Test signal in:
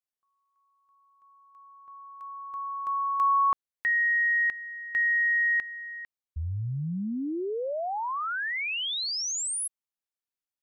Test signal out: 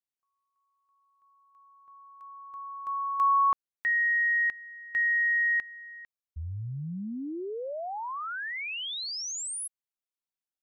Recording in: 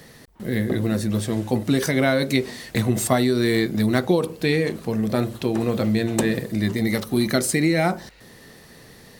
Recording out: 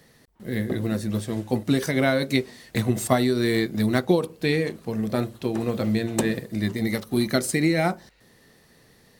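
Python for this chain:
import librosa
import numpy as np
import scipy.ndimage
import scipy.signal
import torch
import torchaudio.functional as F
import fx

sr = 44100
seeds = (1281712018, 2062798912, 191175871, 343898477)

y = fx.upward_expand(x, sr, threshold_db=-34.0, expansion=1.5)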